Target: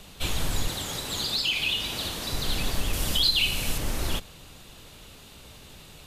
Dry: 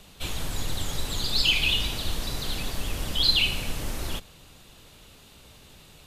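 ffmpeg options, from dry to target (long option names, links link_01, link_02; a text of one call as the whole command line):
ffmpeg -i in.wav -filter_complex "[0:a]alimiter=limit=-18.5dB:level=0:latency=1:release=378,asettb=1/sr,asplit=3[link_01][link_02][link_03];[link_01]atrim=end=0.684[link_04];[link_02]atrim=start=0.68:end=2.33,asetpts=PTS-STARTPTS,afade=type=in:duration=0.004:curve=qsin,afade=type=out:start_time=1.646:duration=0.004:curve=qsin,highpass=frequency=180:poles=1[link_05];[link_03]atrim=start=2.326[link_06];[link_04][link_05]acrossfade=duration=0.004:curve1=hsin:curve2=qsin[link_07];[link_07][link_06]acrossfade=duration=0.004:curve1=qsin:curve2=hsin,asettb=1/sr,asplit=3[link_08][link_09][link_10];[link_08]atrim=end=2.934[link_11];[link_09]atrim=start=2.93:end=3.78,asetpts=PTS-STARTPTS,afade=type=in:duration=0.004:curve=qsin,afade=type=out:start_time=0.846:duration=0.004:curve=qsin,highshelf=frequency=4800:gain=7.5[link_12];[link_10]atrim=start=3.776[link_13];[link_11][link_12]acrossfade=duration=0.004:curve1=hsin:curve2=qsin[link_14];[link_14][link_13]acrossfade=duration=0.004:curve1=qsin:curve2=hsin,volume=3.5dB" out.wav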